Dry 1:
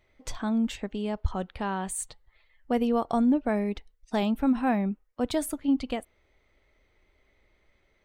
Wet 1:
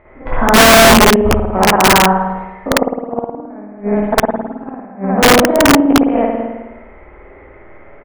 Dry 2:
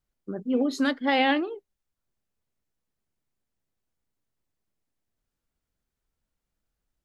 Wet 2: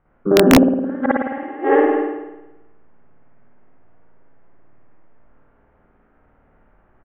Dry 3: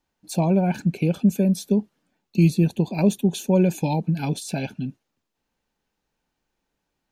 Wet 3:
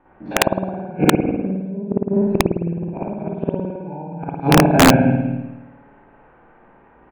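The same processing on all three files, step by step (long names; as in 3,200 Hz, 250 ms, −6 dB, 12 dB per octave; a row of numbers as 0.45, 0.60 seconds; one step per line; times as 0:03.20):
spectrum averaged block by block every 50 ms
on a send: repeating echo 195 ms, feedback 21%, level −5.5 dB
on the sum: gate with flip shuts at −19 dBFS, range −37 dB
in parallel at +2.5 dB: downward compressor 4 to 1, threshold −41 dBFS
on the sum: Bessel low-pass filter 1,200 Hz, order 6
low-shelf EQ 270 Hz −10.5 dB
spring reverb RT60 1 s, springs 53 ms, chirp 65 ms, DRR −7.5 dB
dynamic equaliser 190 Hz, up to −4 dB, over −37 dBFS, Q 0.9
wrap-around overflow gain 21 dB
normalise the peak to −1.5 dBFS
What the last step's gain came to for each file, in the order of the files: +19.5, +19.5, +19.5 decibels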